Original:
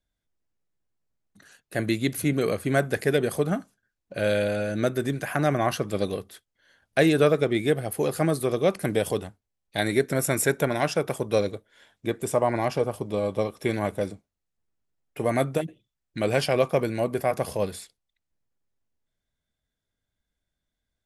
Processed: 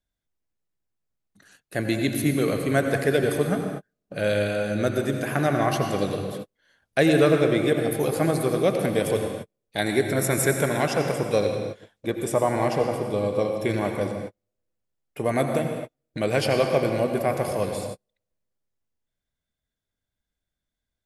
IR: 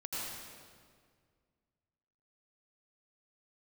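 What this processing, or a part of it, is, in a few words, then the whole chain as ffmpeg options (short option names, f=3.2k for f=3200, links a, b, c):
keyed gated reverb: -filter_complex "[0:a]asplit=3[a][b][c];[1:a]atrim=start_sample=2205[d];[b][d]afir=irnorm=-1:irlink=0[e];[c]apad=whole_len=928368[f];[e][f]sidechaingate=range=-47dB:threshold=-52dB:ratio=16:detection=peak,volume=-3dB[g];[a][g]amix=inputs=2:normalize=0,volume=-2.5dB"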